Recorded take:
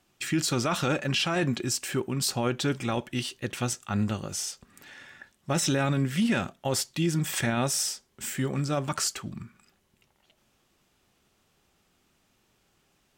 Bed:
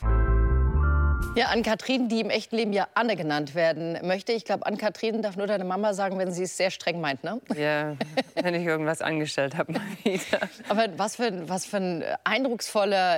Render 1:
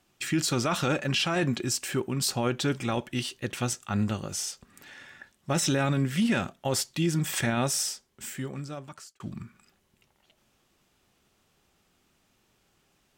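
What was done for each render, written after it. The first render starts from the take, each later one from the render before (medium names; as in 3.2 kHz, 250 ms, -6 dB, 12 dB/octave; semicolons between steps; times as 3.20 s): 7.69–9.20 s: fade out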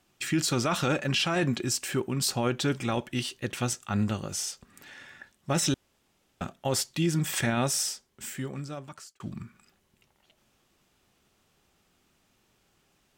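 5.74–6.41 s: room tone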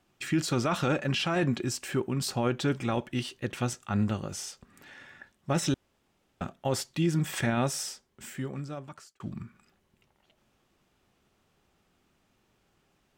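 treble shelf 3.1 kHz -7.5 dB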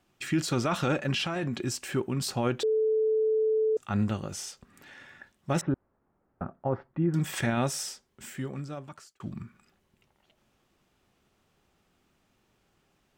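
1.25–1.66 s: compression, threshold -27 dBFS; 2.63–3.77 s: bleep 437 Hz -22 dBFS; 5.61–7.14 s: low-pass 1.5 kHz 24 dB/octave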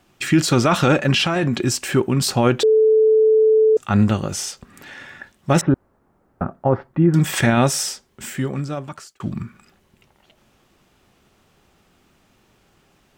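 trim +11.5 dB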